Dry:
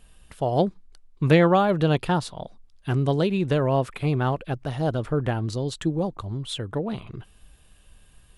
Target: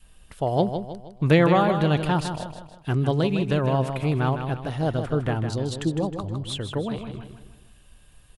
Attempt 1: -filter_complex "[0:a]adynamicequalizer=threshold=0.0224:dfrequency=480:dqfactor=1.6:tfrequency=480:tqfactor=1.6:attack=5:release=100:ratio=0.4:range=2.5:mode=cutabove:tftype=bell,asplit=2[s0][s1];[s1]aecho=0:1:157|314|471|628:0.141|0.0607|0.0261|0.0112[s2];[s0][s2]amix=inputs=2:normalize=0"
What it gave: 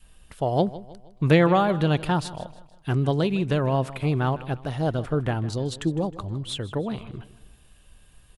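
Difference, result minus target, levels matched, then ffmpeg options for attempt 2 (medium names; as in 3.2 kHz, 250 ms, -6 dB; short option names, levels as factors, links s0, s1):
echo-to-direct -9 dB
-filter_complex "[0:a]adynamicequalizer=threshold=0.0224:dfrequency=480:dqfactor=1.6:tfrequency=480:tqfactor=1.6:attack=5:release=100:ratio=0.4:range=2.5:mode=cutabove:tftype=bell,asplit=2[s0][s1];[s1]aecho=0:1:157|314|471|628|785:0.398|0.171|0.0736|0.0317|0.0136[s2];[s0][s2]amix=inputs=2:normalize=0"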